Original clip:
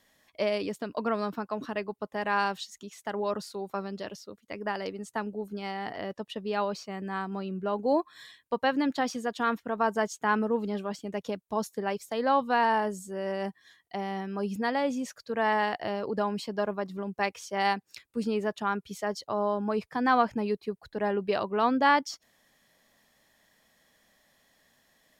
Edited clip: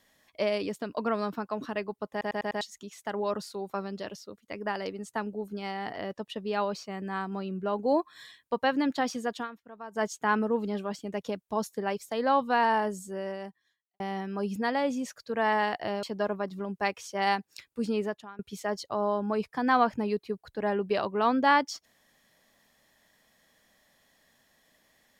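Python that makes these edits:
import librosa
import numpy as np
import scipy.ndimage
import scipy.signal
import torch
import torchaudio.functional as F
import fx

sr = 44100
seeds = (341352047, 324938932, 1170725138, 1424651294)

y = fx.edit(x, sr, fx.stutter_over(start_s=2.11, slice_s=0.1, count=5),
    fx.fade_down_up(start_s=9.36, length_s=0.67, db=-16.0, fade_s=0.12),
    fx.fade_out_span(start_s=13.14, length_s=0.86, curve='qua'),
    fx.cut(start_s=16.03, length_s=0.38),
    fx.fade_out_to(start_s=18.42, length_s=0.35, curve='qua', floor_db=-21.5), tone=tone)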